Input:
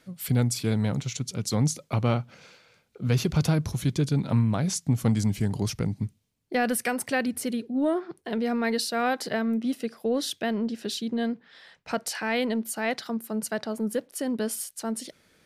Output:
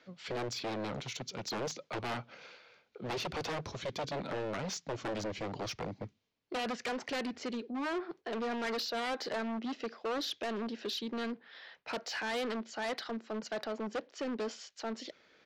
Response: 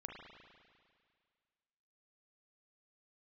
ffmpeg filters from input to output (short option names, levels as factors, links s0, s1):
-filter_complex "[0:a]aresample=16000,aeval=exprs='0.0668*(abs(mod(val(0)/0.0668+3,4)-2)-1)':c=same,aresample=44100,acrossover=split=290 5300:gain=0.178 1 0.0708[s0][s1][s2];[s0][s1][s2]amix=inputs=3:normalize=0,asoftclip=type=tanh:threshold=0.0299"